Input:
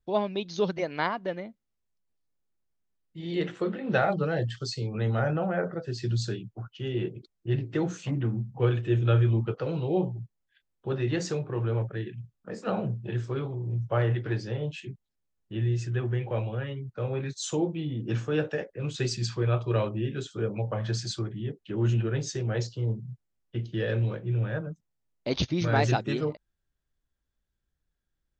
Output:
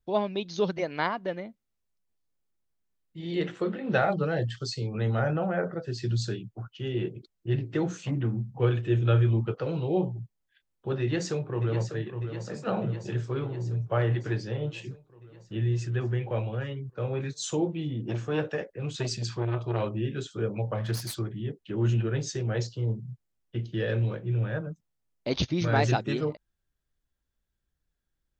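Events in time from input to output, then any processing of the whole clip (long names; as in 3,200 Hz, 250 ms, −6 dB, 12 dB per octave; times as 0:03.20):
0:11.01–0:11.95: delay throw 600 ms, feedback 70%, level −9 dB
0:18.04–0:19.83: saturating transformer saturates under 540 Hz
0:20.75–0:21.15: phase distortion by the signal itself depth 0.13 ms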